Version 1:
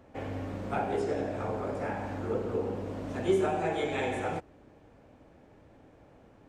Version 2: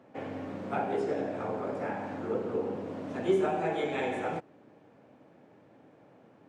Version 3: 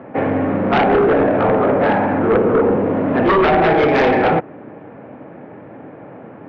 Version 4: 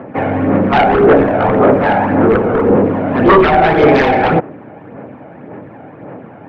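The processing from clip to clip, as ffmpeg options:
ffmpeg -i in.wav -af "highpass=frequency=130:width=0.5412,highpass=frequency=130:width=1.3066,highshelf=frequency=5800:gain=-9.5" out.wav
ffmpeg -i in.wav -af "lowpass=frequency=2300:width=0.5412,lowpass=frequency=2300:width=1.3066,aeval=exprs='0.158*sin(PI/2*3.55*val(0)/0.158)':channel_layout=same,volume=6.5dB" out.wav
ffmpeg -i in.wav -af "aphaser=in_gain=1:out_gain=1:delay=1.4:decay=0.41:speed=1.8:type=sinusoidal,volume=2.5dB" out.wav

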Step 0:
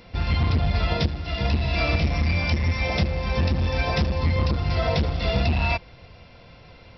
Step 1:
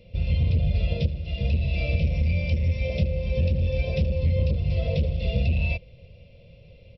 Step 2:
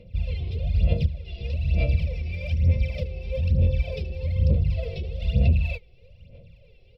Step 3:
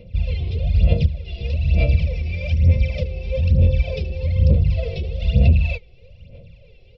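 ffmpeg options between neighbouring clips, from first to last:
ffmpeg -i in.wav -af "firequalizer=gain_entry='entry(160,0);entry(290,-13);entry(550,2);entry(780,-24);entry(1500,-30);entry(2500,-4);entry(4700,-14)':delay=0.05:min_phase=1" out.wav
ffmpeg -i in.wav -af "aphaser=in_gain=1:out_gain=1:delay=2.7:decay=0.73:speed=1.1:type=sinusoidal,volume=-7dB" out.wav
ffmpeg -i in.wav -af "aresample=16000,aresample=44100,volume=5.5dB" out.wav

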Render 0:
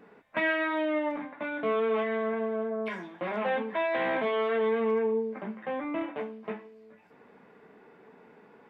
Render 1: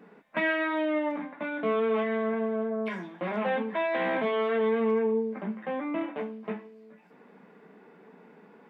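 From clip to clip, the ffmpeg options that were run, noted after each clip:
ffmpeg -i in.wav -af "lowshelf=frequency=140:width_type=q:width=3:gain=-7" out.wav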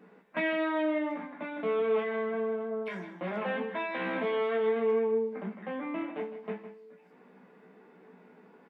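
ffmpeg -i in.wav -filter_complex "[0:a]asplit=2[link_01][link_02];[link_02]adelay=16,volume=-6.5dB[link_03];[link_01][link_03]amix=inputs=2:normalize=0,asplit=2[link_04][link_05];[link_05]adelay=157.4,volume=-11dB,highshelf=frequency=4000:gain=-3.54[link_06];[link_04][link_06]amix=inputs=2:normalize=0,volume=-4dB" out.wav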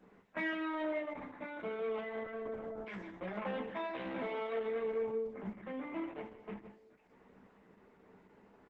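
ffmpeg -i in.wav -filter_complex "[0:a]aeval=exprs='0.119*(cos(1*acos(clip(val(0)/0.119,-1,1)))-cos(1*PI/2))+0.00188*(cos(5*acos(clip(val(0)/0.119,-1,1)))-cos(5*PI/2))':channel_layout=same,asplit=2[link_01][link_02];[link_02]adelay=15,volume=-4.5dB[link_03];[link_01][link_03]amix=inputs=2:normalize=0,volume=-7dB" -ar 48000 -c:a libopus -b:a 10k out.opus

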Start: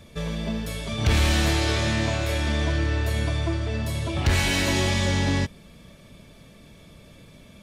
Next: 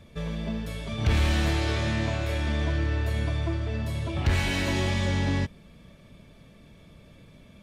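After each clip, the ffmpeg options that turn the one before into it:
ffmpeg -i in.wav -af "bass=frequency=250:gain=2,treble=frequency=4000:gain=-6,volume=-4dB" out.wav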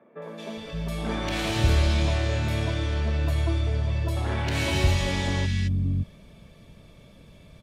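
ffmpeg -i in.wav -filter_complex "[0:a]acrossover=split=250|1700[link_01][link_02][link_03];[link_03]adelay=220[link_04];[link_01]adelay=570[link_05];[link_05][link_02][link_04]amix=inputs=3:normalize=0,volume=2.5dB" out.wav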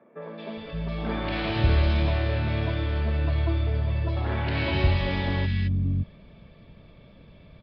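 ffmpeg -i in.wav -af "bass=frequency=250:gain=0,treble=frequency=4000:gain=-9,aresample=11025,aresample=44100" out.wav

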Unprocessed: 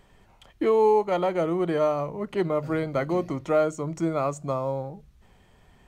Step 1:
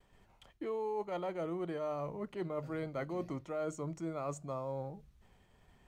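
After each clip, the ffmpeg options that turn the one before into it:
ffmpeg -i in.wav -af "agate=range=-33dB:threshold=-54dB:ratio=3:detection=peak,areverse,acompressor=threshold=-28dB:ratio=6,areverse,volume=-7dB" out.wav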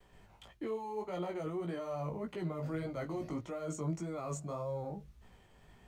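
ffmpeg -i in.wav -filter_complex "[0:a]acrossover=split=180|4300[link_01][link_02][link_03];[link_02]alimiter=level_in=13.5dB:limit=-24dB:level=0:latency=1:release=22,volume=-13.5dB[link_04];[link_01][link_04][link_03]amix=inputs=3:normalize=0,flanger=delay=16.5:depth=3.3:speed=1.7,volume=7.5dB" out.wav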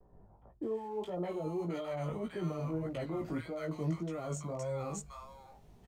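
ffmpeg -i in.wav -filter_complex "[0:a]acrossover=split=1000[link_01][link_02];[link_02]adelay=620[link_03];[link_01][link_03]amix=inputs=2:normalize=0,volume=2dB" out.wav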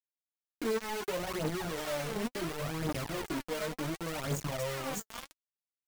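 ffmpeg -i in.wav -af "acompressor=threshold=-40dB:ratio=4,acrusher=bits=6:mix=0:aa=0.000001,aphaser=in_gain=1:out_gain=1:delay=4.8:decay=0.52:speed=0.69:type=triangular,volume=4.5dB" out.wav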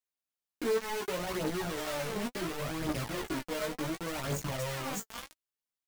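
ffmpeg -i in.wav -filter_complex "[0:a]asplit=2[link_01][link_02];[link_02]adelay=16,volume=-6dB[link_03];[link_01][link_03]amix=inputs=2:normalize=0" out.wav

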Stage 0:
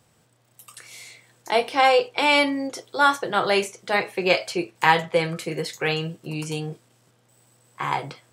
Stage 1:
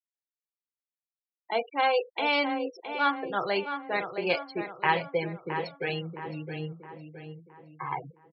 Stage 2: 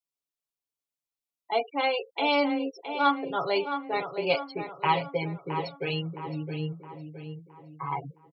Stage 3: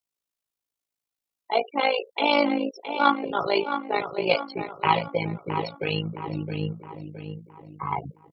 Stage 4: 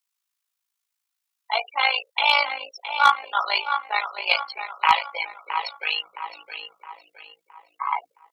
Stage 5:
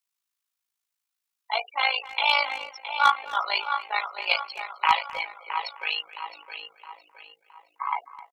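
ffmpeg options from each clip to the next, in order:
ffmpeg -i in.wav -filter_complex "[0:a]afftfilt=real='re*gte(hypot(re,im),0.0794)':imag='im*gte(hypot(re,im),0.0794)':win_size=1024:overlap=0.75,asplit=2[link_01][link_02];[link_02]adelay=666,lowpass=frequency=2600:poles=1,volume=-8dB,asplit=2[link_03][link_04];[link_04]adelay=666,lowpass=frequency=2600:poles=1,volume=0.47,asplit=2[link_05][link_06];[link_06]adelay=666,lowpass=frequency=2600:poles=1,volume=0.47,asplit=2[link_07][link_08];[link_08]adelay=666,lowpass=frequency=2600:poles=1,volume=0.47,asplit=2[link_09][link_10];[link_10]adelay=666,lowpass=frequency=2600:poles=1,volume=0.47[link_11];[link_03][link_05][link_07][link_09][link_11]amix=inputs=5:normalize=0[link_12];[link_01][link_12]amix=inputs=2:normalize=0,volume=-7.5dB" out.wav
ffmpeg -i in.wav -af "equalizer=frequency=1700:width_type=o:width=0.31:gain=-14.5,aecho=1:1:7.1:0.77" out.wav
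ffmpeg -i in.wav -af "tremolo=f=54:d=0.75,volume=6.5dB" out.wav
ffmpeg -i in.wav -af "highpass=frequency=920:width=0.5412,highpass=frequency=920:width=1.3066,asoftclip=type=hard:threshold=-11.5dB,volume=6.5dB" out.wav
ffmpeg -i in.wav -filter_complex "[0:a]asplit=2[link_01][link_02];[link_02]adelay=260,highpass=300,lowpass=3400,asoftclip=type=hard:threshold=-13dB,volume=-16dB[link_03];[link_01][link_03]amix=inputs=2:normalize=0,volume=-3dB" out.wav

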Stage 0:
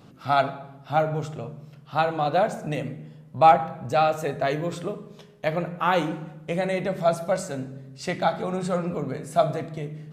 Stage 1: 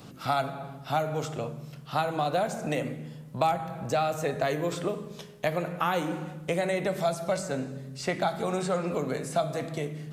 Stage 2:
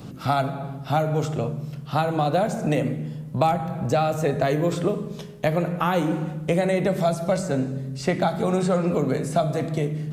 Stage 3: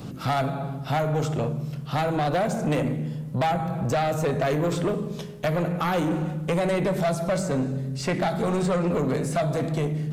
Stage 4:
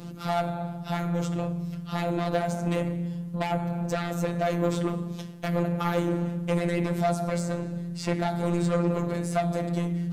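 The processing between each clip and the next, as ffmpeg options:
ffmpeg -i in.wav -filter_complex "[0:a]highshelf=frequency=4200:gain=8.5,acrossover=split=260|2300|7000[link_01][link_02][link_03][link_04];[link_01]acompressor=threshold=-40dB:ratio=4[link_05];[link_02]acompressor=threshold=-29dB:ratio=4[link_06];[link_03]acompressor=threshold=-46dB:ratio=4[link_07];[link_04]acompressor=threshold=-52dB:ratio=4[link_08];[link_05][link_06][link_07][link_08]amix=inputs=4:normalize=0,volume=3dB" out.wav
ffmpeg -i in.wav -af "lowshelf=frequency=440:gain=9,volume=2dB" out.wav
ffmpeg -i in.wav -af "asoftclip=type=tanh:threshold=-21dB,volume=2dB" out.wav
ffmpeg -i in.wav -af "afftfilt=real='hypot(re,im)*cos(PI*b)':imag='0':win_size=1024:overlap=0.75" out.wav

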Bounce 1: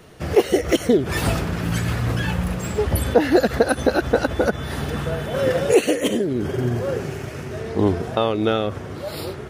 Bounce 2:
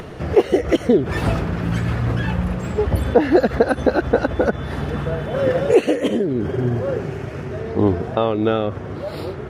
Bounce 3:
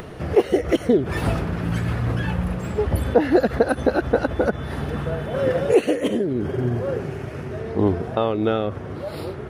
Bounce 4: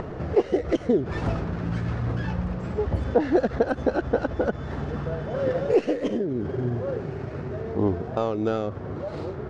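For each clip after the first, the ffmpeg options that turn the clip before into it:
ffmpeg -i in.wav -af "lowpass=frequency=1800:poles=1,acompressor=mode=upward:threshold=-26dB:ratio=2.5,volume=2dB" out.wav
ffmpeg -i in.wav -af "aexciter=amount=1.4:drive=7.1:freq=9400,volume=-2.5dB" out.wav
ffmpeg -i in.wav -filter_complex "[0:a]acrossover=split=1700[link_01][link_02];[link_01]acompressor=mode=upward:threshold=-22dB:ratio=2.5[link_03];[link_02]aeval=exprs='max(val(0),0)':channel_layout=same[link_04];[link_03][link_04]amix=inputs=2:normalize=0,lowpass=frequency=6600:width=0.5412,lowpass=frequency=6600:width=1.3066,volume=-4dB" out.wav

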